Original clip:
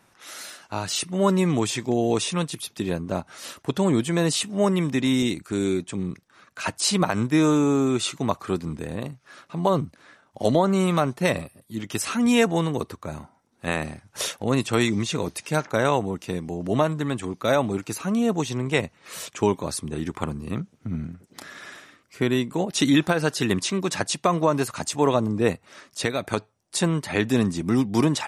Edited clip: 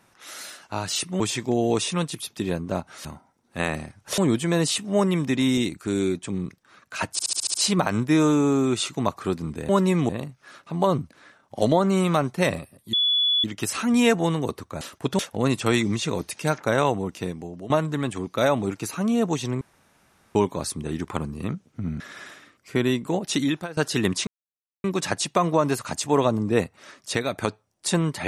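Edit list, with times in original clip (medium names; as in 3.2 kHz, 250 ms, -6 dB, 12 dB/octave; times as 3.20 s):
1.20–1.60 s: move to 8.92 s
3.45–3.83 s: swap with 13.13–14.26 s
6.77 s: stutter 0.07 s, 7 plays
11.76 s: add tone 3.42 kHz -18 dBFS 0.51 s
16.27–16.77 s: fade out, to -16.5 dB
18.68–19.42 s: room tone
21.07–21.46 s: delete
22.62–23.23 s: fade out, to -18.5 dB
23.73 s: insert silence 0.57 s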